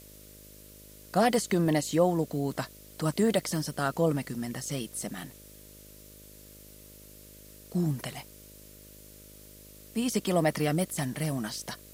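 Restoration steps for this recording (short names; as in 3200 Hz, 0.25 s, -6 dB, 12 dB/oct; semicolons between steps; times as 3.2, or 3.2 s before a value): de-hum 51.3 Hz, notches 12; denoiser 23 dB, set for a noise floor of -51 dBFS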